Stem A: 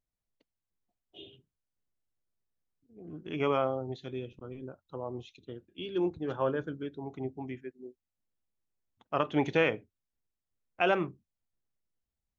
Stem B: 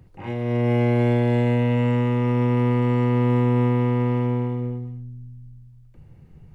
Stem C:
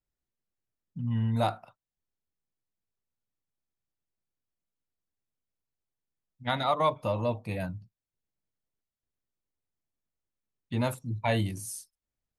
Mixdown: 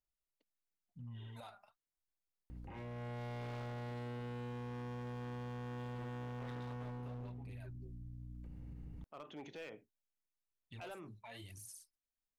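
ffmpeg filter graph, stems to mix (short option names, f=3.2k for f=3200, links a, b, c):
-filter_complex "[0:a]highpass=140,lowshelf=f=360:g=-2.5,volume=-9.5dB[a];[1:a]aeval=exprs='val(0)+0.00891*(sin(2*PI*60*n/s)+sin(2*PI*2*60*n/s)/2+sin(2*PI*3*60*n/s)/3+sin(2*PI*4*60*n/s)/4+sin(2*PI*5*60*n/s)/5)':c=same,adelay=2500,volume=-4.5dB[b];[2:a]equalizer=f=200:w=0.56:g=-12.5,acompressor=threshold=-31dB:ratio=3,aphaser=in_gain=1:out_gain=1:delay=5:decay=0.6:speed=0.94:type=sinusoidal,volume=-11.5dB[c];[a][b][c]amix=inputs=3:normalize=0,asoftclip=type=hard:threshold=-32dB,alimiter=level_in=19dB:limit=-24dB:level=0:latency=1:release=50,volume=-19dB"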